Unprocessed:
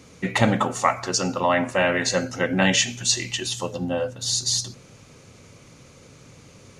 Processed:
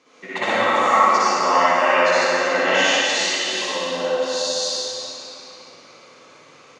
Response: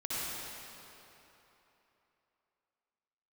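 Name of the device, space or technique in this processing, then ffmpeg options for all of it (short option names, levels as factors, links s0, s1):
station announcement: -filter_complex "[0:a]highpass=440,lowpass=4800,equalizer=f=1100:t=o:w=0.29:g=5,aecho=1:1:61.22|180.8:0.891|0.251[s0];[1:a]atrim=start_sample=2205[s1];[s0][s1]afir=irnorm=-1:irlink=0,volume=0.794"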